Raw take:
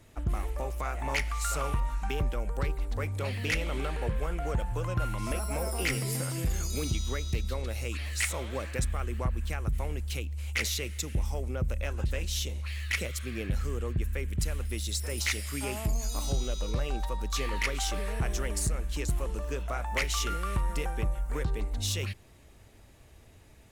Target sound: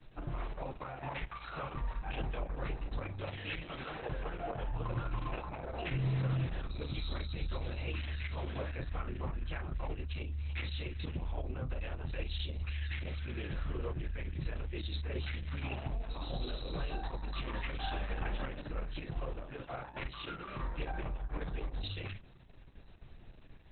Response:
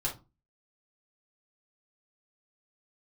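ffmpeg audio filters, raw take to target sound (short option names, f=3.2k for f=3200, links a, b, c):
-filter_complex "[0:a]asplit=3[a][b][c];[a]afade=t=out:st=3.33:d=0.02[d];[b]lowshelf=f=360:g=-8,afade=t=in:st=3.33:d=0.02,afade=t=out:st=4.56:d=0.02[e];[c]afade=t=in:st=4.56:d=0.02[f];[d][e][f]amix=inputs=3:normalize=0,asettb=1/sr,asplit=3[g][h][i];[g]atrim=end=17.834[j];[h]atrim=start=17.83:end=18.83,asetpts=PTS-STARTPTS,afade=t=in:d=0.004:c=qsin,afade=t=out:st=0.996:d=0.004:c=qsin,aecho=1:1:3.8:0.67,atrim=end_sample=44100[k];[i]atrim=start=18.826[l];[j][k]acrossfade=d=0.004:c1=hsin:c2=qsin[m];[m][l]acrossfade=d=0.004:c1=qsin:c2=hsin,acrossover=split=120|330|4800[n][o][p][q];[n]acompressor=threshold=-39dB:ratio=4[r];[o]acompressor=threshold=-47dB:ratio=4[s];[p]acompressor=threshold=-36dB:ratio=4[t];[q]acompressor=threshold=-51dB:ratio=4[u];[r][s][t][u]amix=inputs=4:normalize=0[v];[1:a]atrim=start_sample=2205,atrim=end_sample=3087[w];[v][w]afir=irnorm=-1:irlink=0,volume=-7dB" -ar 48000 -c:a libopus -b:a 6k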